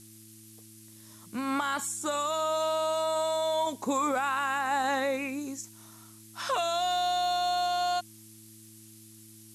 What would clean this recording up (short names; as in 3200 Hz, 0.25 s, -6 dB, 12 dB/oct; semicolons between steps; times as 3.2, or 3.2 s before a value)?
clip repair -20 dBFS; de-click; de-hum 109.5 Hz, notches 3; noise print and reduce 26 dB